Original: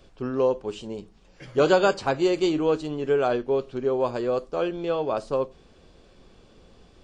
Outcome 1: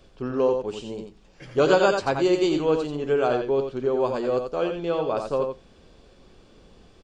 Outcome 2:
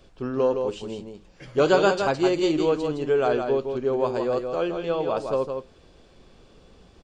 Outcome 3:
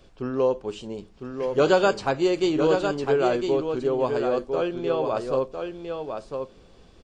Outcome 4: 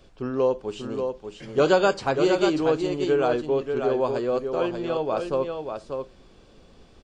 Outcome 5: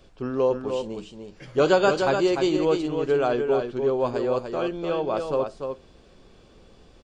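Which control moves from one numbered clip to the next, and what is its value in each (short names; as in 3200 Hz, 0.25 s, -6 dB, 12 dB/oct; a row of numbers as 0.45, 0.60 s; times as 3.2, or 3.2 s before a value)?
echo, time: 88, 164, 1005, 589, 296 ms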